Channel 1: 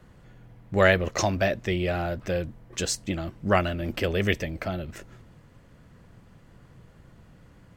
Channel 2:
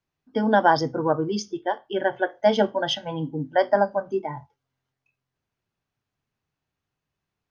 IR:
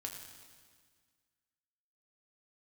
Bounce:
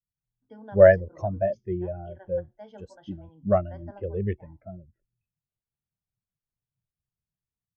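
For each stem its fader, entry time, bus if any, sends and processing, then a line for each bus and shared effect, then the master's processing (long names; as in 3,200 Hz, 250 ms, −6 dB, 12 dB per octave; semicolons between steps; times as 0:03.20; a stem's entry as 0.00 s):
+1.5 dB, 0.00 s, no send, every bin expanded away from the loudest bin 2.5 to 1
−18.5 dB, 0.15 s, no send, mains-hum notches 60/120/180/240/300/360 Hz; automatic ducking −8 dB, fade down 0.95 s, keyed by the first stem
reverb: not used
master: low-pass filter 1,900 Hz 6 dB per octave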